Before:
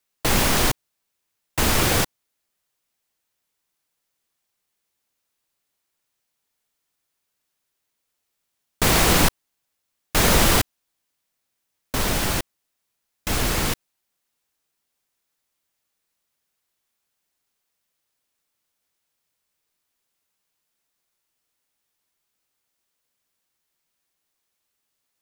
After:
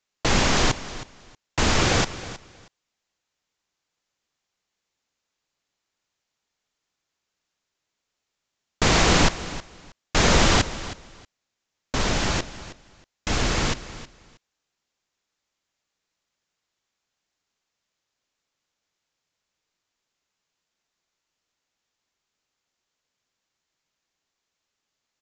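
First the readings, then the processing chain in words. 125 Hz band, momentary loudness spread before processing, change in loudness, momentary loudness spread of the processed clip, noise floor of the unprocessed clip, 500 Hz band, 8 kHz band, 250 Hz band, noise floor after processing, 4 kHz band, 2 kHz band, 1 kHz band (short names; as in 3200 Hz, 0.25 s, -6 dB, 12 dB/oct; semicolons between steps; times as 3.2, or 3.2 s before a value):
0.0 dB, 14 LU, -1.5 dB, 19 LU, -78 dBFS, 0.0 dB, -3.0 dB, 0.0 dB, -83 dBFS, 0.0 dB, 0.0 dB, 0.0 dB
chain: feedback echo 0.317 s, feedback 19%, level -15.5 dB; downsampling 16000 Hz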